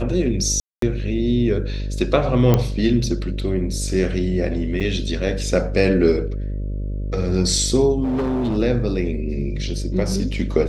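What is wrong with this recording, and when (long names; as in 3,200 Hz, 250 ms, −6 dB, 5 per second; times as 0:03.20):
mains buzz 50 Hz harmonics 12 −25 dBFS
0:00.60–0:00.82: drop-out 223 ms
0:02.54: click −4 dBFS
0:04.80–0:04.81: drop-out 6.1 ms
0:08.03–0:08.58: clipping −18.5 dBFS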